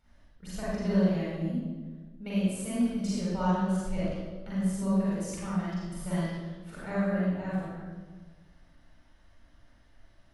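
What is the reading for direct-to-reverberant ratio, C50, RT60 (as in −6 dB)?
−9.0 dB, −4.5 dB, 1.4 s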